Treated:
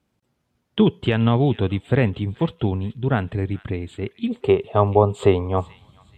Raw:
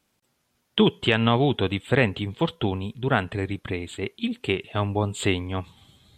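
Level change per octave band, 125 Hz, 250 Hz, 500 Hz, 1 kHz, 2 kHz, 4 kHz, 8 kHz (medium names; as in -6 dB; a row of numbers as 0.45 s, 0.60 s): +5.5 dB, +3.5 dB, +5.0 dB, +3.0 dB, -4.5 dB, -6.0 dB, no reading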